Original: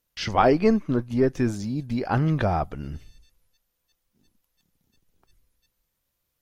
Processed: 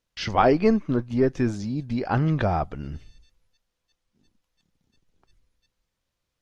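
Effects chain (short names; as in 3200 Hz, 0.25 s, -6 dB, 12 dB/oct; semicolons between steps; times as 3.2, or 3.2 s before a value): LPF 6500 Hz 12 dB/oct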